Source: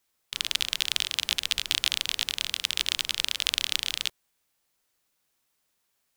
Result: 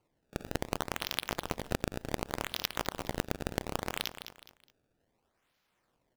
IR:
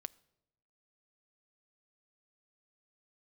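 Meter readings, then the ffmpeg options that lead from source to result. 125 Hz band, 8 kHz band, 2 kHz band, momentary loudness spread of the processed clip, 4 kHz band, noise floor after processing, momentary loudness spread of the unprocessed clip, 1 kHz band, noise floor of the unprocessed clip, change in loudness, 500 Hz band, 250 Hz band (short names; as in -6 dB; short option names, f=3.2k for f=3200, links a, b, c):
+12.5 dB, -12.0 dB, -8.0 dB, 5 LU, -15.0 dB, -78 dBFS, 4 LU, +6.0 dB, -76 dBFS, -10.0 dB, +14.5 dB, +15.0 dB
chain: -filter_complex "[0:a]asplit=2[a][b];[1:a]atrim=start_sample=2205[c];[b][c]afir=irnorm=-1:irlink=0,volume=-3dB[d];[a][d]amix=inputs=2:normalize=0,acrusher=samples=24:mix=1:aa=0.000001:lfo=1:lforange=38.4:lforate=0.67,asplit=2[e][f];[f]aecho=0:1:209|418|627:0.188|0.0603|0.0193[g];[e][g]amix=inputs=2:normalize=0,acompressor=threshold=-22dB:ratio=6,volume=-5.5dB"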